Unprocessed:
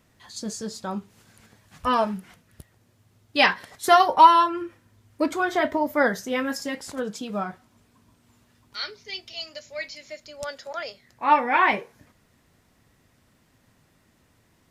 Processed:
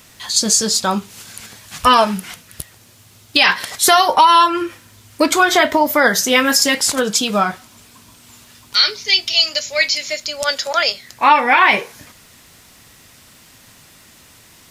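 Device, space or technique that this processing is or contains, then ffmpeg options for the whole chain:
mastering chain: -af "equalizer=f=1800:t=o:w=0.5:g=-3,acompressor=threshold=0.0562:ratio=2,tiltshelf=f=1300:g=-7,alimiter=level_in=7.94:limit=0.891:release=50:level=0:latency=1,volume=0.891"

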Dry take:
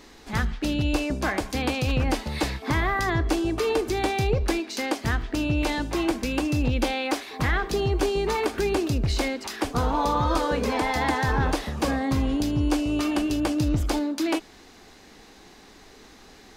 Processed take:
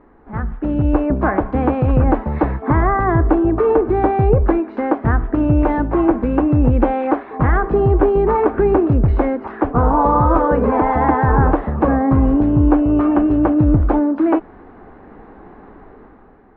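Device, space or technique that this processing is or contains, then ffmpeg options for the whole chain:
action camera in a waterproof case: -af "lowpass=f=1400:w=0.5412,lowpass=f=1400:w=1.3066,dynaudnorm=f=160:g=9:m=3.16,volume=1.19" -ar 48000 -c:a aac -b:a 48k

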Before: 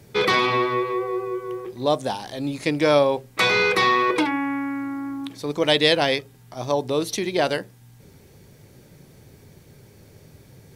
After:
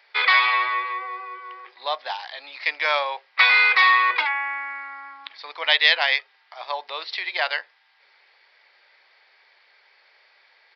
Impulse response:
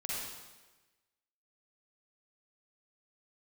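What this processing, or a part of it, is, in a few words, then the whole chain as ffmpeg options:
musical greeting card: -af "aresample=11025,aresample=44100,highpass=f=810:w=0.5412,highpass=f=810:w=1.3066,equalizer=f=2000:t=o:w=0.6:g=7,volume=1.12"

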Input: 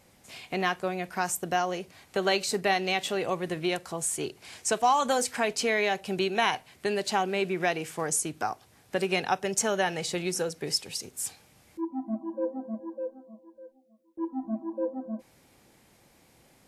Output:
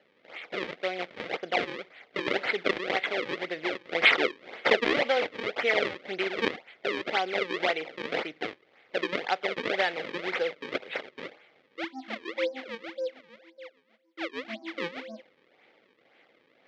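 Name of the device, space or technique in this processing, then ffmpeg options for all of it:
circuit-bent sampling toy: -filter_complex "[0:a]asettb=1/sr,asplit=3[s0][s1][s2];[s0]atrim=end=3.924[s3];[s1]atrim=start=3.92:end=5.03,asetpts=PTS-STARTPTS,afade=t=in:d=0.004:c=qsin,afade=t=out:st=1.106:d=0.004:c=qsin,equalizer=f=250:t=o:w=1:g=11,equalizer=f=500:t=o:w=1:g=5,equalizer=f=8000:t=o:w=1:g=8[s4];[s2]atrim=start=5.026[s5];[s3][s4]acrossfade=d=0.004:c1=hsin:c2=qsin[s6];[s6][s5]acrossfade=d=0.004:c1=qsin:c2=hsin,acrusher=samples=36:mix=1:aa=0.000001:lfo=1:lforange=57.6:lforate=1.9,highpass=420,equalizer=f=510:t=q:w=4:g=4,equalizer=f=1000:t=q:w=4:g=-7,equalizer=f=2100:t=q:w=4:g=10,equalizer=f=3300:t=q:w=4:g=4,lowpass=f=4300:w=0.5412,lowpass=f=4300:w=1.3066"

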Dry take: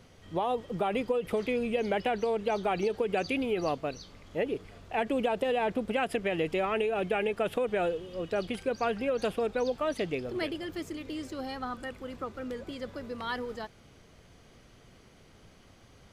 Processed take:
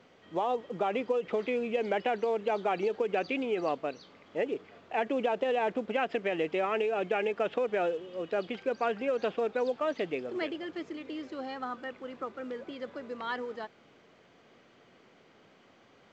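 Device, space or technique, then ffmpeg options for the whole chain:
telephone: -af "highpass=250,lowpass=3200" -ar 16000 -c:a pcm_mulaw

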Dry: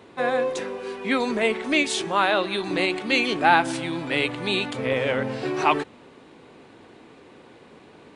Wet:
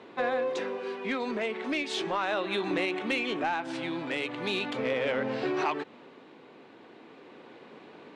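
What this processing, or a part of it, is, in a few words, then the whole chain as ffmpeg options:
AM radio: -filter_complex "[0:a]highpass=190,lowpass=4400,acompressor=threshold=0.0631:ratio=5,asoftclip=type=tanh:threshold=0.119,tremolo=f=0.38:d=0.29,asettb=1/sr,asplit=3[s0][s1][s2];[s0]atrim=end=2.254[s3];[s1]atrim=start=2.25:end=3.46,asetpts=PTS-STARTPTS,afade=t=in:d=0.004:c=qsin,afade=t=out:st=1.206:d=0.004:c=qsin,equalizer=f=4600:w=5.9:g=-9[s4];[s2]atrim=start=3.456[s5];[s3][s4]acrossfade=d=0.004:c1=hsin:c2=qsin[s6];[s6][s5]acrossfade=d=0.004:c1=qsin:c2=hsin"

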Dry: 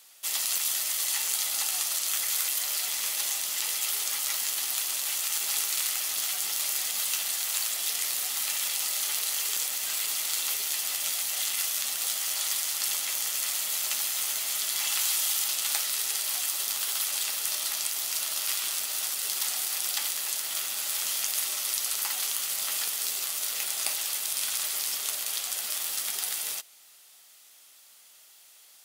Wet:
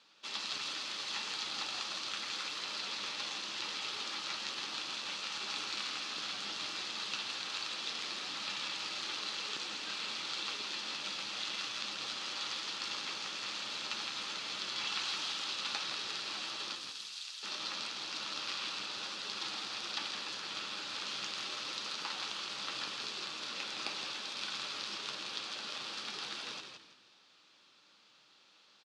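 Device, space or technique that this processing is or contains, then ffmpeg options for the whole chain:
frequency-shifting delay pedal into a guitar cabinet: -filter_complex "[0:a]asettb=1/sr,asplit=3[s0][s1][s2];[s0]atrim=end=16.754[s3];[s1]atrim=start=16.75:end=17.43,asetpts=PTS-STARTPTS,afade=t=in:d=0.004:c=qsin,afade=t=out:st=0.676:d=0.004:c=qsin,aderivative[s4];[s2]atrim=start=17.426[s5];[s3][s4]acrossfade=d=0.004:c1=hsin:c2=qsin[s6];[s6][s5]acrossfade=d=0.004:c1=qsin:c2=hsin,asplit=5[s7][s8][s9][s10][s11];[s8]adelay=164,afreqshift=-75,volume=0.473[s12];[s9]adelay=328,afreqshift=-150,volume=0.146[s13];[s10]adelay=492,afreqshift=-225,volume=0.0457[s14];[s11]adelay=656,afreqshift=-300,volume=0.0141[s15];[s7][s12][s13][s14][s15]amix=inputs=5:normalize=0,highpass=100,equalizer=f=120:t=q:w=4:g=8,equalizer=f=200:t=q:w=4:g=7,equalizer=f=310:t=q:w=4:g=7,equalizer=f=690:t=q:w=4:g=-9,equalizer=f=2000:t=q:w=4:g=-9,equalizer=f=3100:t=q:w=4:g=-5,lowpass=f=4100:w=0.5412,lowpass=f=4100:w=1.3066"

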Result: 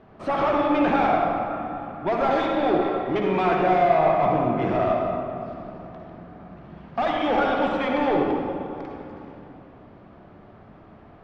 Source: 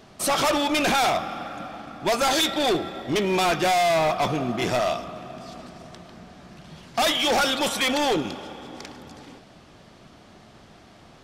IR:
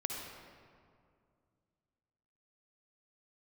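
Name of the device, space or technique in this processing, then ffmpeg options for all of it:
swimming-pool hall: -filter_complex "[1:a]atrim=start_sample=2205[s0];[0:a][s0]afir=irnorm=-1:irlink=0,highshelf=f=4800:g=-8,asettb=1/sr,asplit=3[s1][s2][s3];[s1]atrim=end=2.824[s4];[s2]atrim=start=2.82:end=3.61,asetpts=PTS-STARTPTS,afade=t=in:d=0.004:c=qsin,afade=t=out:st=0.786:d=0.004:c=qsin,tiltshelf=f=650:g=-3[s5];[s3]atrim=start=3.606[s6];[s4][s5]acrossfade=d=0.004:c1=hsin:c2=qsin[s7];[s7][s6]acrossfade=d=0.004:c1=qsin:c2=hsin,lowpass=1700"

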